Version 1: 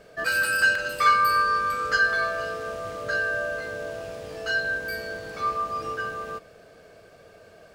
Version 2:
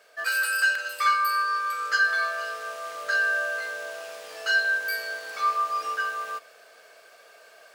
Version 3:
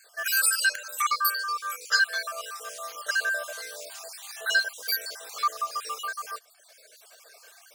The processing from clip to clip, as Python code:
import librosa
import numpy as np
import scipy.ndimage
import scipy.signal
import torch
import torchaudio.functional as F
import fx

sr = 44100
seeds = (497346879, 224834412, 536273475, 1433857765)

y1 = scipy.signal.sosfilt(scipy.signal.butter(2, 890.0, 'highpass', fs=sr, output='sos'), x)
y1 = fx.high_shelf(y1, sr, hz=10000.0, db=5.5)
y1 = fx.rider(y1, sr, range_db=4, speed_s=2.0)
y2 = fx.spec_dropout(y1, sr, seeds[0], share_pct=39)
y2 = fx.dereverb_blind(y2, sr, rt60_s=1.5)
y2 = fx.bass_treble(y2, sr, bass_db=-10, treble_db=13)